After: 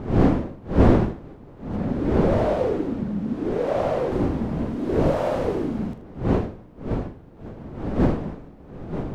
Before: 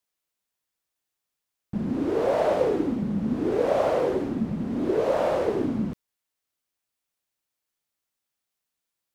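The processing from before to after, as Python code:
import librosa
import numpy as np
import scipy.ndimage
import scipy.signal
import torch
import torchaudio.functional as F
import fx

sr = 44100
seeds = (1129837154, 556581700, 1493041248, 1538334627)

y = fx.dmg_wind(x, sr, seeds[0], corner_hz=320.0, level_db=-24.0)
y = fx.high_shelf(y, sr, hz=6500.0, db=-7.0, at=(1.76, 4.12))
y = fx.room_early_taps(y, sr, ms=(43, 79), db=(-11.0, -14.5))
y = y * 10.0 ** (-1.0 / 20.0)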